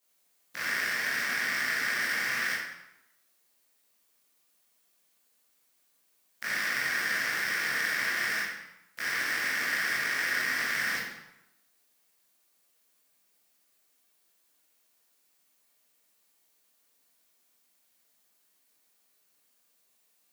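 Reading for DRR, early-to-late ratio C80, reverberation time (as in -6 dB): -9.5 dB, 4.0 dB, 0.90 s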